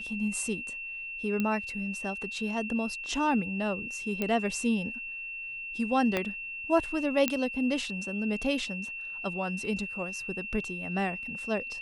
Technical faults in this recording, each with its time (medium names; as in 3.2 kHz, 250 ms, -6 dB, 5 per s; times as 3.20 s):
whine 2.7 kHz -36 dBFS
1.40 s: pop -17 dBFS
4.22 s: pop -16 dBFS
6.17 s: pop -14 dBFS
7.28 s: pop -9 dBFS